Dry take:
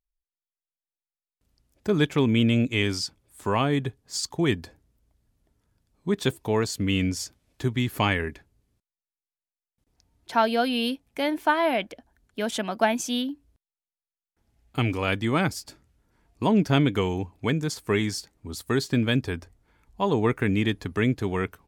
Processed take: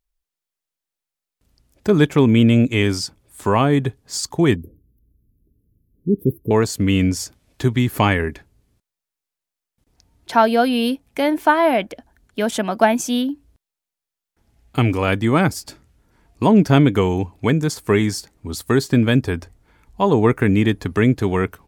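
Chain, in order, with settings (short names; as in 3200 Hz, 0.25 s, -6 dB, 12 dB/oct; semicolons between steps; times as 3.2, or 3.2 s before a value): dynamic EQ 3500 Hz, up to -6 dB, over -40 dBFS, Q 0.73; 4.56–6.51 inverse Chebyshev band-stop 770–7800 Hz, stop band 40 dB; gain +8 dB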